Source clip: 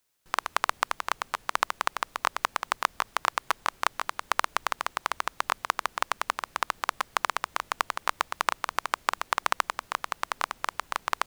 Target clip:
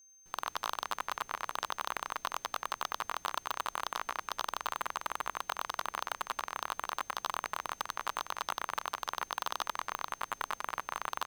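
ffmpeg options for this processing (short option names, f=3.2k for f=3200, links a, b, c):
-af "aecho=1:1:93.29|291.5:0.891|0.355,aeval=exprs='0.237*(abs(mod(val(0)/0.237+3,4)-2)-1)':c=same,aeval=exprs='val(0)+0.00282*sin(2*PI*6300*n/s)':c=same,volume=-7dB"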